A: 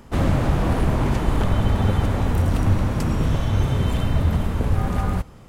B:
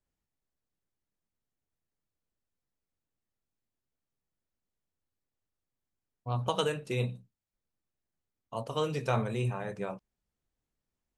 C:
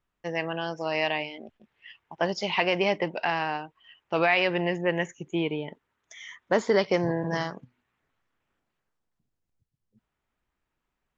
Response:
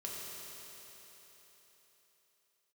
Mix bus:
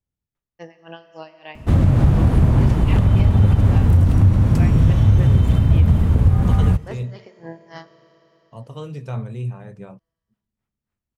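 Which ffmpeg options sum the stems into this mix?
-filter_complex "[0:a]adelay=1550,volume=0.75[s0];[1:a]acontrast=36,volume=0.237[s1];[2:a]alimiter=limit=0.119:level=0:latency=1:release=125,aeval=exprs='val(0)*pow(10,-27*(0.5-0.5*cos(2*PI*3.5*n/s))/20)':c=same,adelay=350,volume=0.562,asplit=2[s2][s3];[s3]volume=0.422[s4];[s0][s1]amix=inputs=2:normalize=0,equalizer=f=99:t=o:w=2.7:g=13.5,alimiter=limit=0.531:level=0:latency=1:release=130,volume=1[s5];[3:a]atrim=start_sample=2205[s6];[s4][s6]afir=irnorm=-1:irlink=0[s7];[s2][s5][s7]amix=inputs=3:normalize=0"

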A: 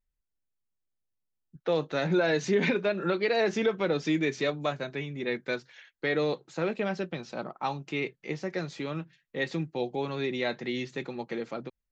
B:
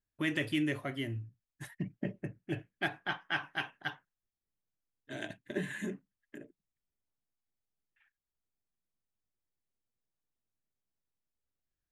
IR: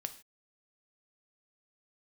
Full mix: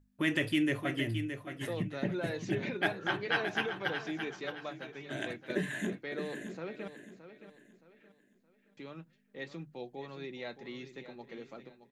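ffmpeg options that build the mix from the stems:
-filter_complex "[0:a]bandreject=f=50:t=h:w=6,bandreject=f=100:t=h:w=6,bandreject=f=150:t=h:w=6,volume=0.251,asplit=3[s0][s1][s2];[s0]atrim=end=6.88,asetpts=PTS-STARTPTS,afade=t=out:st=6.876:d=0.004:c=hsin[s3];[s1]atrim=start=6.88:end=8.77,asetpts=PTS-STARTPTS,volume=0[s4];[s2]atrim=start=8.77,asetpts=PTS-STARTPTS,afade=t=in:d=0.004:c=hsin[s5];[s3][s4][s5]concat=n=3:v=0:a=1,asplit=2[s6][s7];[s7]volume=0.251[s8];[1:a]volume=1.33,asplit=2[s9][s10];[s10]volume=0.376[s11];[s8][s11]amix=inputs=2:normalize=0,aecho=0:1:620|1240|1860|2480|3100:1|0.34|0.116|0.0393|0.0134[s12];[s6][s9][s12]amix=inputs=3:normalize=0,aeval=exprs='val(0)+0.000794*(sin(2*PI*50*n/s)+sin(2*PI*2*50*n/s)/2+sin(2*PI*3*50*n/s)/3+sin(2*PI*4*50*n/s)/4+sin(2*PI*5*50*n/s)/5)':c=same,bandreject=f=50:t=h:w=6,bandreject=f=100:t=h:w=6,bandreject=f=150:t=h:w=6"

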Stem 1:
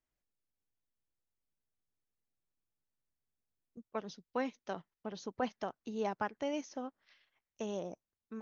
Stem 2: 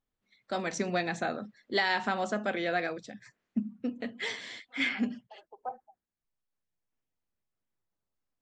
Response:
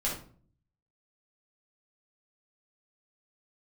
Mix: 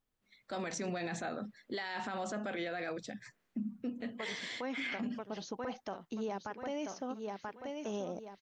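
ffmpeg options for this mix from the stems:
-filter_complex "[0:a]adelay=250,volume=1.33,asplit=2[s0][s1];[s1]volume=0.376[s2];[1:a]alimiter=level_in=1.41:limit=0.0631:level=0:latency=1:release=22,volume=0.708,volume=1.19[s3];[s2]aecho=0:1:984|1968|2952|3936|4920:1|0.38|0.144|0.0549|0.0209[s4];[s0][s3][s4]amix=inputs=3:normalize=0,alimiter=level_in=2:limit=0.0631:level=0:latency=1:release=87,volume=0.501"

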